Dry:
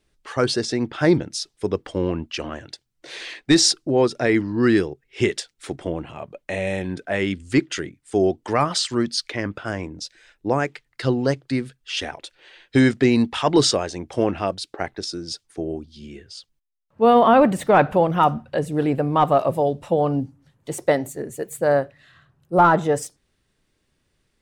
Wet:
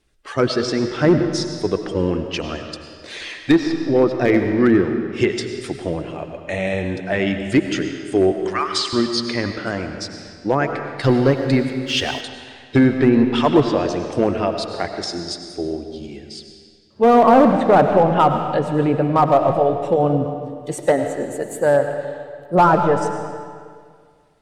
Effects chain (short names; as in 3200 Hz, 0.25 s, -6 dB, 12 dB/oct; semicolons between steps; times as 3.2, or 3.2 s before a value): bin magnitudes rounded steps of 15 dB; 8.32–8.93 HPF 1100 Hz 24 dB/oct; treble ducked by the level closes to 1400 Hz, closed at -12.5 dBFS; overloaded stage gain 10 dB; on a send at -6 dB: reverb RT60 2.0 s, pre-delay 60 ms; 11.04–12.21 on the sum: sample leveller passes 1; gain +3 dB